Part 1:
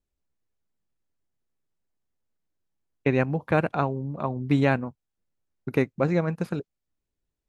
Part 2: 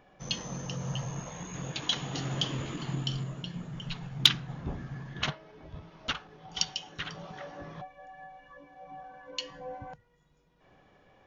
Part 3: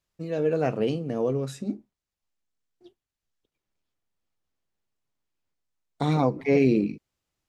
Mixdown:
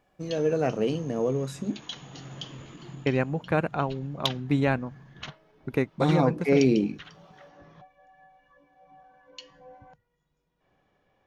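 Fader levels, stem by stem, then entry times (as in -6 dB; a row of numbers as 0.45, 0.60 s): -2.5, -8.5, -0.5 dB; 0.00, 0.00, 0.00 s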